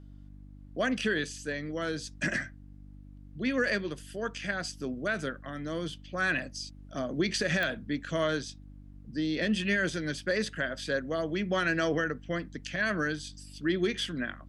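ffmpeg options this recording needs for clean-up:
-af "adeclick=t=4,bandreject=f=49.2:t=h:w=4,bandreject=f=98.4:t=h:w=4,bandreject=f=147.6:t=h:w=4,bandreject=f=196.8:t=h:w=4,bandreject=f=246:t=h:w=4,bandreject=f=295.2:t=h:w=4"

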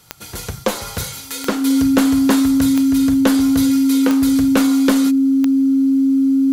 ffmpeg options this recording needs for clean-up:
-af "adeclick=t=4,bandreject=f=270:w=30"

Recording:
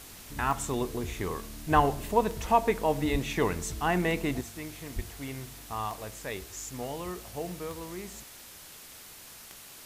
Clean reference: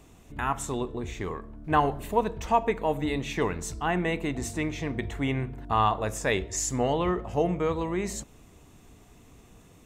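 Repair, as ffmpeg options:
-filter_complex "[0:a]adeclick=t=4,asplit=3[a][b][c];[a]afade=t=out:st=1.75:d=0.02[d];[b]highpass=f=140:w=0.5412,highpass=f=140:w=1.3066,afade=t=in:st=1.75:d=0.02,afade=t=out:st=1.87:d=0.02[e];[c]afade=t=in:st=1.87:d=0.02[f];[d][e][f]amix=inputs=3:normalize=0,asplit=3[g][h][i];[g]afade=t=out:st=3.11:d=0.02[j];[h]highpass=f=140:w=0.5412,highpass=f=140:w=1.3066,afade=t=in:st=3.11:d=0.02,afade=t=out:st=3.23:d=0.02[k];[i]afade=t=in:st=3.23:d=0.02[l];[j][k][l]amix=inputs=3:normalize=0,asplit=3[m][n][o];[m]afade=t=out:st=4.95:d=0.02[p];[n]highpass=f=140:w=0.5412,highpass=f=140:w=1.3066,afade=t=in:st=4.95:d=0.02,afade=t=out:st=5.07:d=0.02[q];[o]afade=t=in:st=5.07:d=0.02[r];[p][q][r]amix=inputs=3:normalize=0,afwtdn=0.0045,asetnsamples=n=441:p=0,asendcmd='4.41 volume volume 11dB',volume=0dB"

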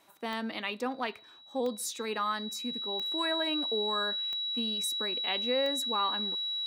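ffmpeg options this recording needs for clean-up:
-af "adeclick=t=4,bandreject=f=3.9k:w=30"

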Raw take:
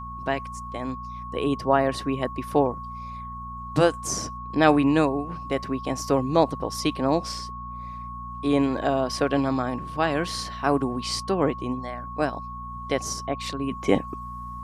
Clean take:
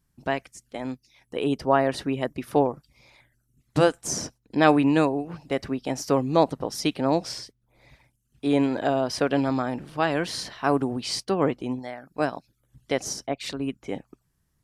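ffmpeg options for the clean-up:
-af "bandreject=f=59.7:t=h:w=4,bandreject=f=119.4:t=h:w=4,bandreject=f=179.1:t=h:w=4,bandreject=f=238.8:t=h:w=4,bandreject=f=1.1k:w=30,asetnsamples=n=441:p=0,asendcmd='13.71 volume volume -11.5dB',volume=0dB"

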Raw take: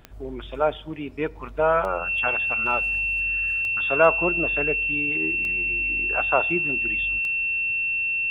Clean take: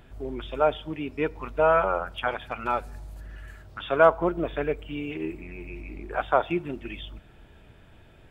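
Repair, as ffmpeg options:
-af "adeclick=t=4,bandreject=f=2.7k:w=30"

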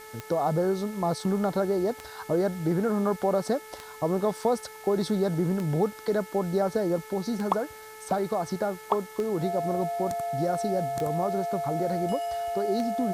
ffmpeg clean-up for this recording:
-af "adeclick=t=4,bandreject=f=434.4:t=h:w=4,bandreject=f=868.8:t=h:w=4,bandreject=f=1.3032k:t=h:w=4,bandreject=f=1.7376k:t=h:w=4,bandreject=f=2.172k:t=h:w=4,bandreject=f=690:w=30,afwtdn=0.0032"

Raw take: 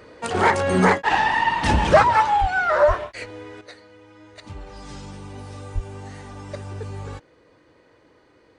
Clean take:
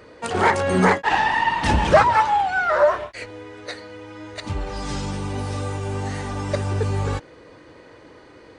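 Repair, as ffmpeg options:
-filter_complex "[0:a]asplit=3[a][b][c];[a]afade=t=out:st=2.4:d=0.02[d];[b]highpass=f=140:w=0.5412,highpass=f=140:w=1.3066,afade=t=in:st=2.4:d=0.02,afade=t=out:st=2.52:d=0.02[e];[c]afade=t=in:st=2.52:d=0.02[f];[d][e][f]amix=inputs=3:normalize=0,asplit=3[g][h][i];[g]afade=t=out:st=2.87:d=0.02[j];[h]highpass=f=140:w=0.5412,highpass=f=140:w=1.3066,afade=t=in:st=2.87:d=0.02,afade=t=out:st=2.99:d=0.02[k];[i]afade=t=in:st=2.99:d=0.02[l];[j][k][l]amix=inputs=3:normalize=0,asplit=3[m][n][o];[m]afade=t=out:st=5.74:d=0.02[p];[n]highpass=f=140:w=0.5412,highpass=f=140:w=1.3066,afade=t=in:st=5.74:d=0.02,afade=t=out:st=5.86:d=0.02[q];[o]afade=t=in:st=5.86:d=0.02[r];[p][q][r]amix=inputs=3:normalize=0,asetnsamples=n=441:p=0,asendcmd='3.61 volume volume 10dB',volume=0dB"

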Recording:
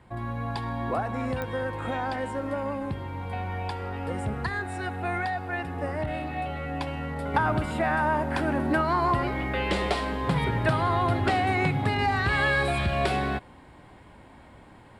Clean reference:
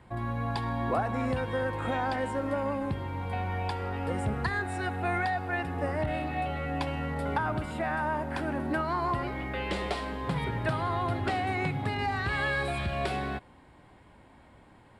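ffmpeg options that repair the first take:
-af "adeclick=t=4,asetnsamples=n=441:p=0,asendcmd='7.34 volume volume -5.5dB',volume=0dB"

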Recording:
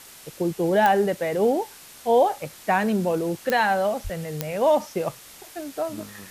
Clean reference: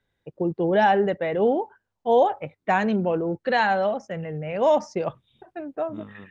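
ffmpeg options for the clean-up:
-filter_complex "[0:a]adeclick=t=4,asplit=3[a][b][c];[a]afade=t=out:st=4.03:d=0.02[d];[b]highpass=f=140:w=0.5412,highpass=f=140:w=1.3066,afade=t=in:st=4.03:d=0.02,afade=t=out:st=4.15:d=0.02[e];[c]afade=t=in:st=4.15:d=0.02[f];[d][e][f]amix=inputs=3:normalize=0,afwtdn=0.0063"

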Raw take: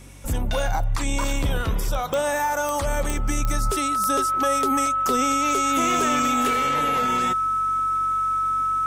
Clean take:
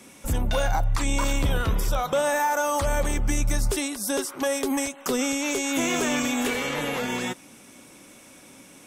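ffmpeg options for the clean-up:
-af "adeclick=t=4,bandreject=f=47.2:t=h:w=4,bandreject=f=94.4:t=h:w=4,bandreject=f=141.6:t=h:w=4,bandreject=f=1.3k:w=30"

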